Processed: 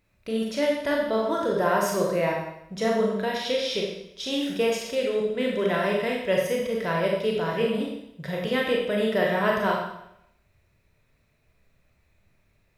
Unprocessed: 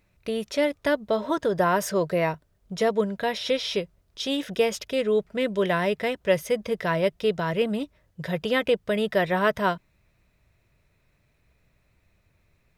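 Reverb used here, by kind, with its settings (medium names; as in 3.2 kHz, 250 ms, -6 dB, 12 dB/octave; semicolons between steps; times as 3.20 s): Schroeder reverb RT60 0.78 s, combs from 28 ms, DRR -2 dB; trim -4 dB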